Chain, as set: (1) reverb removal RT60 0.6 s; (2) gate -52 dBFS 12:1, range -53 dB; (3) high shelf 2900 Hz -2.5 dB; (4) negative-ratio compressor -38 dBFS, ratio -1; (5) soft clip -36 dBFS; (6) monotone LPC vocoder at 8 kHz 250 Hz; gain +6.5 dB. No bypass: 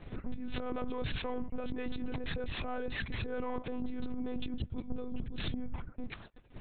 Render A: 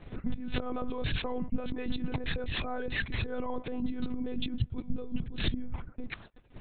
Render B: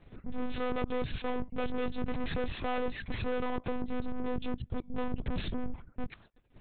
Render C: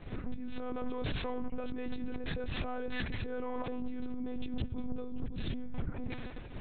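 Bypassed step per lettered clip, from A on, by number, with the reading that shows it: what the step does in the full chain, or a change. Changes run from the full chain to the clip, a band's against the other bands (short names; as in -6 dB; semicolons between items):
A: 5, distortion -9 dB; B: 4, crest factor change +2.0 dB; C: 1, 4 kHz band -2.0 dB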